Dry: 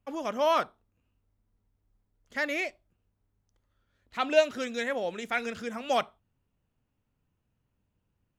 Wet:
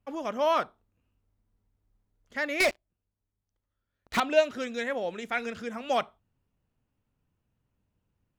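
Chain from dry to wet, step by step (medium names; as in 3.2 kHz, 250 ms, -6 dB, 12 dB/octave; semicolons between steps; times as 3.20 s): treble shelf 4.3 kHz -4.5 dB; 2.60–4.20 s: waveshaping leveller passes 5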